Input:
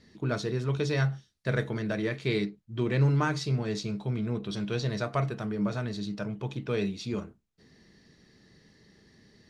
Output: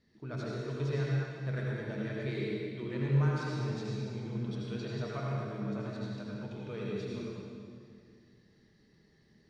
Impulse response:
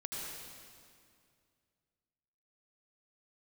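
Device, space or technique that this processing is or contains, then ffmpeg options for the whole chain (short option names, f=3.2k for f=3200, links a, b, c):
swimming-pool hall: -filter_complex "[0:a]asettb=1/sr,asplit=3[a][b][c];[a]atrim=end=2.394[d];[b]atrim=start=2.39:end=2.85,asetpts=PTS-STARTPTS,afade=t=in:d=0.004:c=qsin,afade=t=out:st=0.456:d=0.004:c=qsin,highpass=f=150:w=0.5412,highpass=f=150:w=1.3066[e];[c]atrim=start=2.846[f];[d][e]acrossfade=d=0.004:c1=hsin:c2=qsin[g];[g][f]acrossfade=d=0.004:c1=qsin:c2=hsin[h];[1:a]atrim=start_sample=2205[i];[h][i]afir=irnorm=-1:irlink=0,highshelf=f=5.5k:g=-6.5,volume=-8dB"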